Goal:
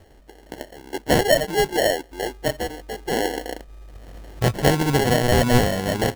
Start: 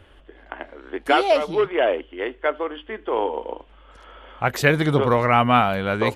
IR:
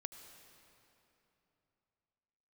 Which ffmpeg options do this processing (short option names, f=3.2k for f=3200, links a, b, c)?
-filter_complex "[0:a]asettb=1/sr,asplit=3[a][b][c];[a]atrim=end=2.114[d];[b]atrim=start=2.11:end=4.63,asetpts=PTS-STARTPTS,afade=t=in:d=0.004:c=qsin,afade=t=out:st=2.516:d=0.004:c=qsin,lowshelf=f=150:t=q:w=1.5:g=9[e];[c]atrim=start=4.626[f];[d][e]acrossfade=d=0.004:c1=hsin:c2=qsin[g];[g][f]acrossfade=d=0.004:c1=qsin:c2=hsin,acrusher=samples=36:mix=1:aa=0.000001"